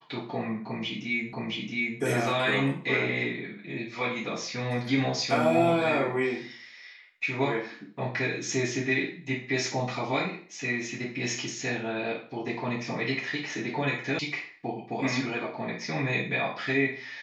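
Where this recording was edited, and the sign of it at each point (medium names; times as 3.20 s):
1.33 s: repeat of the last 0.67 s
14.19 s: sound stops dead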